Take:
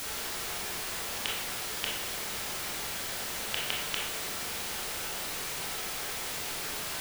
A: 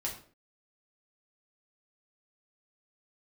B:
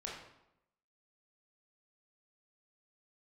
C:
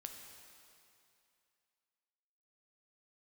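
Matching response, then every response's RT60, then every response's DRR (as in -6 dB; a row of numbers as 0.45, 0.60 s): B; 0.45, 0.85, 2.6 s; -3.0, -4.0, 3.0 dB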